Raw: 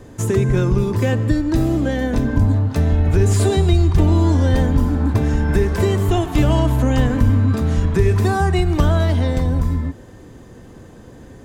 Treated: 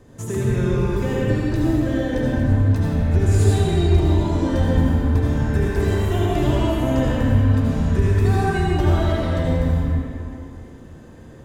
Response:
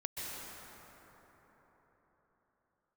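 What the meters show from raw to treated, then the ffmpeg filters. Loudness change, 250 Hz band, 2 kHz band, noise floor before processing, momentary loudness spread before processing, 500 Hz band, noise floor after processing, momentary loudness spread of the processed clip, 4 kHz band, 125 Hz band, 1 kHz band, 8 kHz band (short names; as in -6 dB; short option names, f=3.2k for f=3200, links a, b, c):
-2.5 dB, -2.0 dB, -2.0 dB, -41 dBFS, 4 LU, -2.0 dB, -42 dBFS, 5 LU, -2.5 dB, -2.0 dB, -2.5 dB, -5.0 dB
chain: -filter_complex "[1:a]atrim=start_sample=2205,asetrate=79380,aresample=44100[a];[0:a][a]afir=irnorm=-1:irlink=0"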